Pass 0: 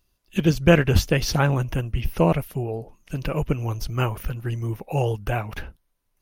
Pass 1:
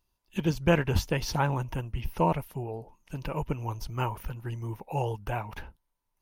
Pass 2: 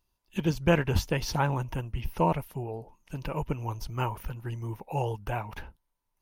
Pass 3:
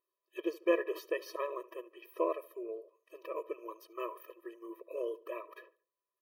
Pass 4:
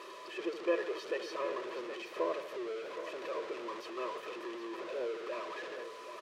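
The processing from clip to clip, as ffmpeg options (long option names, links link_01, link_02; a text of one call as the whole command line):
ffmpeg -i in.wav -af "equalizer=frequency=920:width=5:gain=12,volume=-8dB" out.wav
ffmpeg -i in.wav -af anull out.wav
ffmpeg -i in.wav -filter_complex "[0:a]equalizer=frequency=6400:width_type=o:width=1.7:gain=-13.5,asplit=2[link_01][link_02];[link_02]adelay=73,lowpass=frequency=2800:poles=1,volume=-19dB,asplit=2[link_03][link_04];[link_04]adelay=73,lowpass=frequency=2800:poles=1,volume=0.39,asplit=2[link_05][link_06];[link_06]adelay=73,lowpass=frequency=2800:poles=1,volume=0.39[link_07];[link_01][link_03][link_05][link_07]amix=inputs=4:normalize=0,afftfilt=real='re*eq(mod(floor(b*sr/1024/330),2),1)':imag='im*eq(mod(floor(b*sr/1024/330),2),1)':win_size=1024:overlap=0.75,volume=-2dB" out.wav
ffmpeg -i in.wav -af "aeval=exprs='val(0)+0.5*0.02*sgn(val(0))':channel_layout=same,highpass=270,lowpass=4100,aecho=1:1:771:0.282,volume=-3.5dB" out.wav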